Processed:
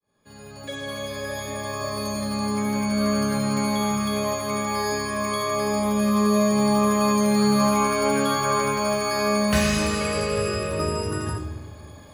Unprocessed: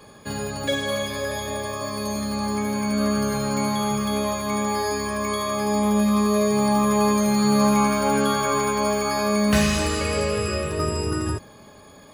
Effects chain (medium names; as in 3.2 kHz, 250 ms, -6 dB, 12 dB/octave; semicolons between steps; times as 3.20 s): fade-in on the opening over 1.83 s; on a send: reverberation RT60 1.2 s, pre-delay 10 ms, DRR 5.5 dB; on the sum: trim -1.5 dB